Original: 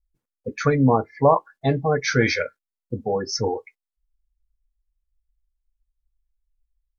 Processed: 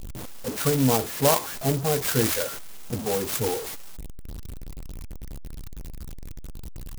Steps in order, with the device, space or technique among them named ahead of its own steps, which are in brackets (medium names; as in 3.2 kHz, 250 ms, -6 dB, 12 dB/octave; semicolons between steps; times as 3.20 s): early CD player with a faulty converter (jump at every zero crossing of -23.5 dBFS; sampling jitter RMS 0.14 ms); trim -5 dB